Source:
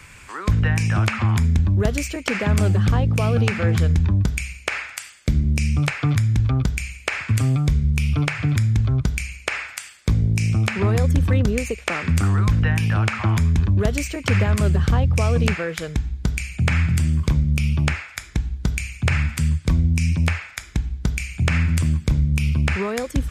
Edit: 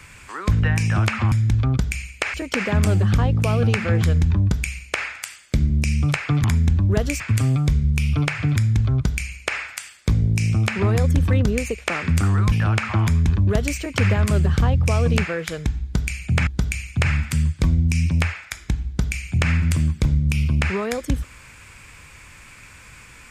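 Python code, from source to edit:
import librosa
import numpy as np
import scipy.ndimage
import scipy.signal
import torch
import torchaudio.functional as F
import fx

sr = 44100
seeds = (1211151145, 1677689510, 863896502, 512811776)

y = fx.edit(x, sr, fx.swap(start_s=1.32, length_s=0.76, other_s=6.18, other_length_s=1.02),
    fx.cut(start_s=12.52, length_s=0.3),
    fx.cut(start_s=16.77, length_s=1.76), tone=tone)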